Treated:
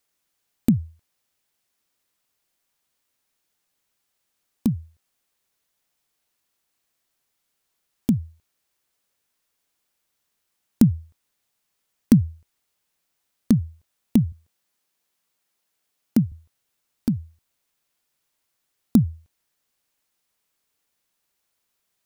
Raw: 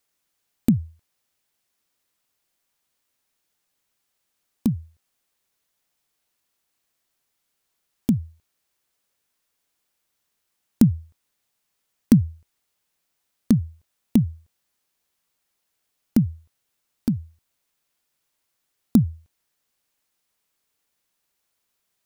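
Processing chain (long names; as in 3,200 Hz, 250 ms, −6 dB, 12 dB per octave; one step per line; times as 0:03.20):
0:14.32–0:16.32: high-pass filter 110 Hz 12 dB per octave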